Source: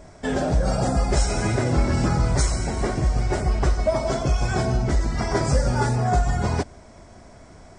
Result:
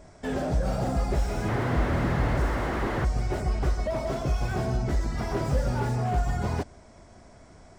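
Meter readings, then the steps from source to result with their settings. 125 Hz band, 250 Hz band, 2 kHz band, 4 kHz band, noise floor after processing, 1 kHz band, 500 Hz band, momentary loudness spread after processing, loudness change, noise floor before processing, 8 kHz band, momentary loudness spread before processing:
−5.0 dB, −4.5 dB, −4.0 dB, −8.5 dB, −52 dBFS, −5.0 dB, −5.0 dB, 4 LU, −5.0 dB, −47 dBFS, −13.0 dB, 3 LU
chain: sound drawn into the spectrogram noise, 0:01.48–0:03.05, 210–2,200 Hz −21 dBFS
slew-rate limiting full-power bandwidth 58 Hz
level −5 dB

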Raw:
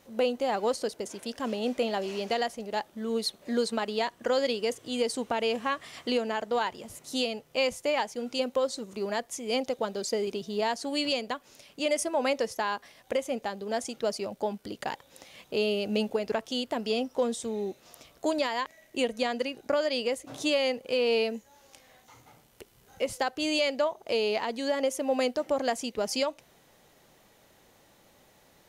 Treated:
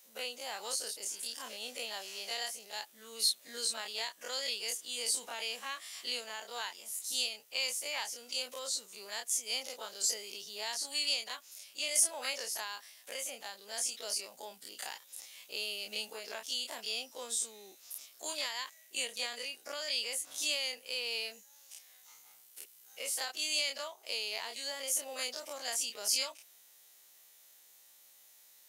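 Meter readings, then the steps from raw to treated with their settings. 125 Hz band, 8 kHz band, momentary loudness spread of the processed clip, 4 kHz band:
can't be measured, +6.5 dB, 14 LU, 0.0 dB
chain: every bin's largest magnitude spread in time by 60 ms
first difference
level +1 dB

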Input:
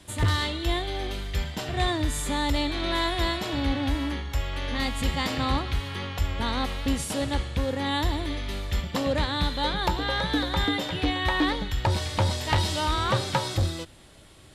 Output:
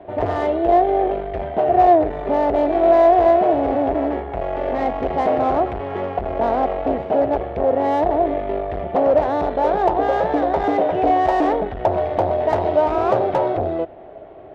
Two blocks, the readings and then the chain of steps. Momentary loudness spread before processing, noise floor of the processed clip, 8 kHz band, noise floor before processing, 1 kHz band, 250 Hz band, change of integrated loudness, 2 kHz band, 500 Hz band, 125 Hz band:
6 LU, −37 dBFS, below −15 dB, −50 dBFS, +12.5 dB, +6.0 dB, +8.5 dB, −2.5 dB, +16.5 dB, −4.5 dB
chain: low-pass filter 2,400 Hz 24 dB per octave
tube saturation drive 28 dB, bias 0.4
parametric band 620 Hz +12.5 dB 0.63 octaves
hollow resonant body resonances 410/690 Hz, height 17 dB, ringing for 20 ms

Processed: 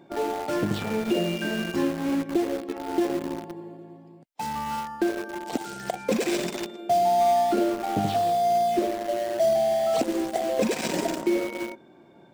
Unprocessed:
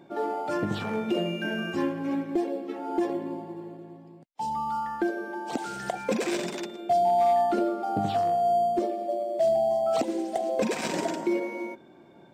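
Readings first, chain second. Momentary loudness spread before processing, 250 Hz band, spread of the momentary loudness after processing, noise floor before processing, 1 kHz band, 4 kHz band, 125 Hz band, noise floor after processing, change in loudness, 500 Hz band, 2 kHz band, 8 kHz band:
12 LU, +2.5 dB, 11 LU, −52 dBFS, +1.0 dB, +4.5 dB, +3.0 dB, −52 dBFS, +2.0 dB, +1.5 dB, +1.5 dB, +5.5 dB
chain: dynamic equaliser 1,200 Hz, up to −5 dB, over −40 dBFS, Q 1.2
in parallel at −7.5 dB: bit reduction 5 bits

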